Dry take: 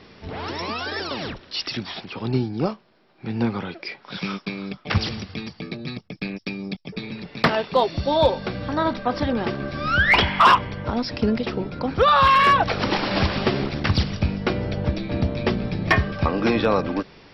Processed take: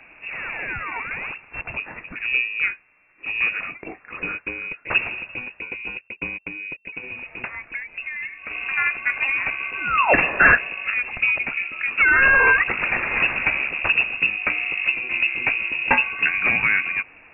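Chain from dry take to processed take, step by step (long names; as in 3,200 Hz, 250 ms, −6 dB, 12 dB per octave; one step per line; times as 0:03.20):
stylus tracing distortion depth 0.12 ms
0:06.46–0:08.51: downward compressor 16 to 1, threshold −28 dBFS, peak gain reduction 16.5 dB
voice inversion scrambler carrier 2,700 Hz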